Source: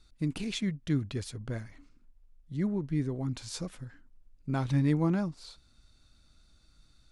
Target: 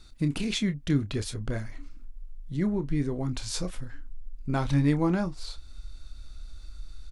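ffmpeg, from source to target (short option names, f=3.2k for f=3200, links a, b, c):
-filter_complex "[0:a]asubboost=boost=7:cutoff=53,asplit=2[a][b];[b]acompressor=threshold=-45dB:ratio=6,volume=0dB[c];[a][c]amix=inputs=2:normalize=0,asplit=2[d][e];[e]adelay=28,volume=-11dB[f];[d][f]amix=inputs=2:normalize=0,volume=3.5dB"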